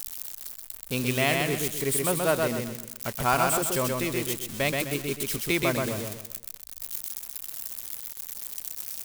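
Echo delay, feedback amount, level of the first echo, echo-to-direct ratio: 0.128 s, 35%, -3.0 dB, -2.5 dB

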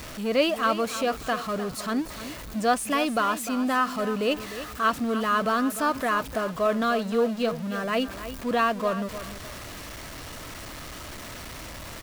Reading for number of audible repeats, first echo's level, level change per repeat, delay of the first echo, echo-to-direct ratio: 2, -12.5 dB, -10.0 dB, 0.302 s, -12.0 dB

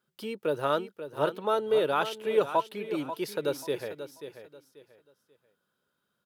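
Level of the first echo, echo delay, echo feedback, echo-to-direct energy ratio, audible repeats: -11.0 dB, 0.537 s, 27%, -10.5 dB, 3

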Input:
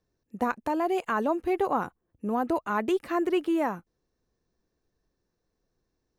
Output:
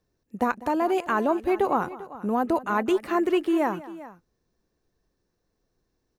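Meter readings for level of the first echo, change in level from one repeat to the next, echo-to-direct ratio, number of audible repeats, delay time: -18.5 dB, +1.5 dB, -14.5 dB, 2, 0.198 s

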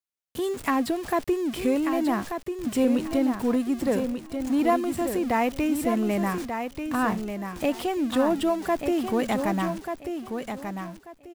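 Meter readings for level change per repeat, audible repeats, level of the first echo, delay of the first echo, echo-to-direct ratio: -13.0 dB, 3, -7.0 dB, 1.188 s, -7.0 dB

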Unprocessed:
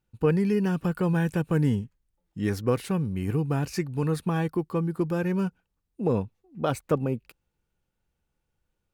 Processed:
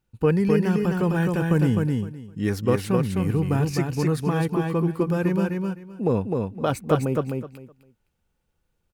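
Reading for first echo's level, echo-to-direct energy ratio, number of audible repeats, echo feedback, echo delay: -3.5 dB, -3.5 dB, 3, 19%, 0.257 s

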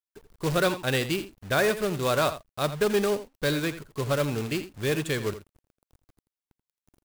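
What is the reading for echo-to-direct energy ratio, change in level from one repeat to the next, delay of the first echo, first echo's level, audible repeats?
-13.0 dB, no steady repeat, 83 ms, -13.0 dB, 1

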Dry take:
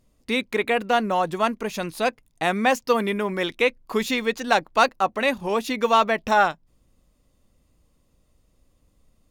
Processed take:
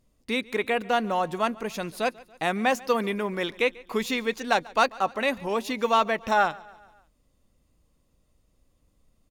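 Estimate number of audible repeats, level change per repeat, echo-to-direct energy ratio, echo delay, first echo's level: 3, -5.5 dB, -21.0 dB, 0.141 s, -22.5 dB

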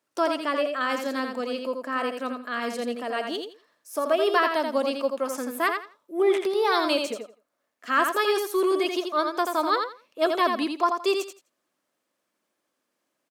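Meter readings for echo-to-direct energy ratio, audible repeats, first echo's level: -5.5 dB, 3, -5.5 dB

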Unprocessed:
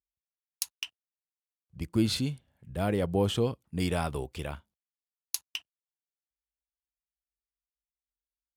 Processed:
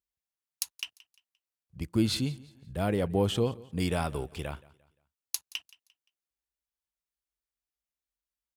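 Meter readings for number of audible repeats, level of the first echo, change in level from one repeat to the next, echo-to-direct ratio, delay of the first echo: 2, -21.5 dB, -9.0 dB, -21.0 dB, 0.174 s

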